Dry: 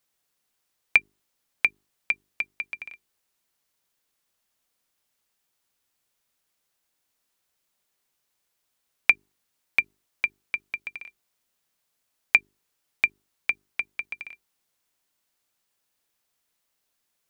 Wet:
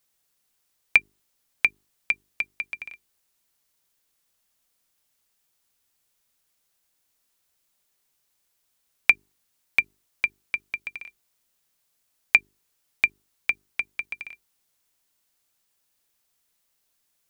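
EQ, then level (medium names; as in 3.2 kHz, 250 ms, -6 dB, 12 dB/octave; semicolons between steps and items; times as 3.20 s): bass shelf 110 Hz +5.5 dB; treble shelf 4.3 kHz +5 dB; 0.0 dB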